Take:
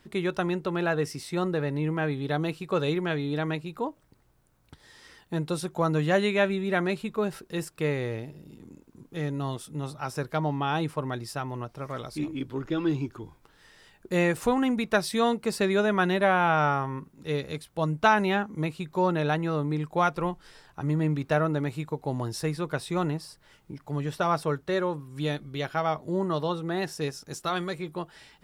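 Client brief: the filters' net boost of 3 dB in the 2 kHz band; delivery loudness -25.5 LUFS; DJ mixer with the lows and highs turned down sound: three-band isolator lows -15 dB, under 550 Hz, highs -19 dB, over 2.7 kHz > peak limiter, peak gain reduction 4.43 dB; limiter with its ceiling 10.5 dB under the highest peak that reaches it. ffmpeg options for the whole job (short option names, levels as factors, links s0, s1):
-filter_complex "[0:a]equalizer=f=2000:t=o:g=6,alimiter=limit=0.158:level=0:latency=1,acrossover=split=550 2700:gain=0.178 1 0.112[s0][s1][s2];[s0][s1][s2]amix=inputs=3:normalize=0,volume=2.99,alimiter=limit=0.282:level=0:latency=1"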